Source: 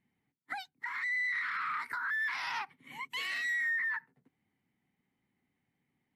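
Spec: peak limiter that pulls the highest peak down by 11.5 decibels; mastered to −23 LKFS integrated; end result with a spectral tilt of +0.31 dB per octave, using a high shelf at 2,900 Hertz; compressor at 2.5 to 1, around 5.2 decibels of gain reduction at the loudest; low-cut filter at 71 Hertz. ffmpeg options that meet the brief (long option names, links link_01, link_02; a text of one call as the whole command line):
ffmpeg -i in.wav -af "highpass=71,highshelf=frequency=2900:gain=8,acompressor=threshold=-36dB:ratio=2.5,volume=20dB,alimiter=limit=-17.5dB:level=0:latency=1" out.wav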